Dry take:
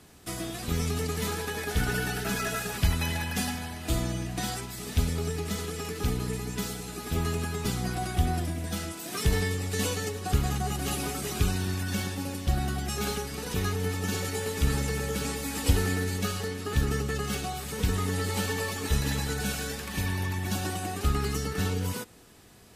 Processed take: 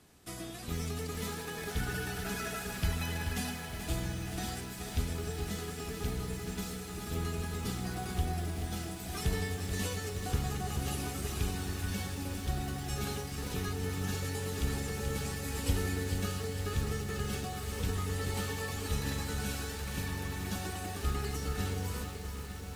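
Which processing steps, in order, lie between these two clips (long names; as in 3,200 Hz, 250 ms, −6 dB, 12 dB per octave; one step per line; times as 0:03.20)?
feedback echo with a long and a short gap by turns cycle 1,205 ms, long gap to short 3 to 1, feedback 70%, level −12.5 dB
feedback echo at a low word length 431 ms, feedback 35%, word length 7 bits, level −7.5 dB
level −7.5 dB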